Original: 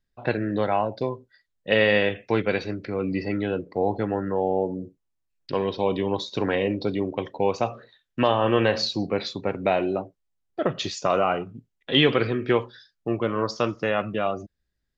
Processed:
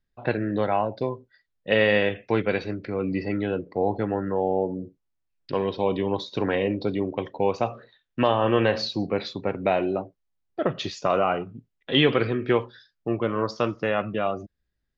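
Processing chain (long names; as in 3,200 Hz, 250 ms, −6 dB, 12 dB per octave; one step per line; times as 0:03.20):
high-frequency loss of the air 96 metres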